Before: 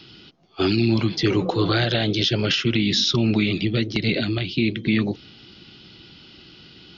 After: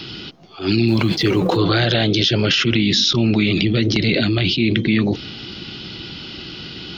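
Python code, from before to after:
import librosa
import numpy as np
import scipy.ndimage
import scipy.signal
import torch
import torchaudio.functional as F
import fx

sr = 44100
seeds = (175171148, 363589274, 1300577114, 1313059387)

p1 = fx.law_mismatch(x, sr, coded='A', at=(0.88, 1.57))
p2 = fx.over_compress(p1, sr, threshold_db=-30.0, ratio=-1.0)
p3 = p1 + F.gain(torch.from_numpy(p2), 2.0).numpy()
p4 = fx.attack_slew(p3, sr, db_per_s=170.0)
y = F.gain(torch.from_numpy(p4), 1.5).numpy()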